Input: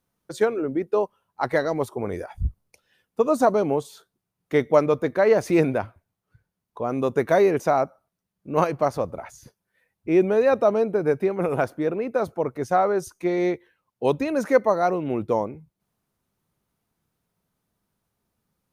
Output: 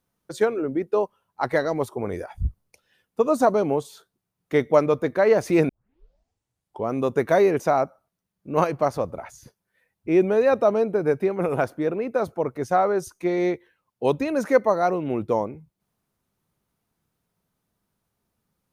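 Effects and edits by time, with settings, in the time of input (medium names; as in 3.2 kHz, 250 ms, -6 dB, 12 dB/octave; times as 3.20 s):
5.69 s: tape start 1.23 s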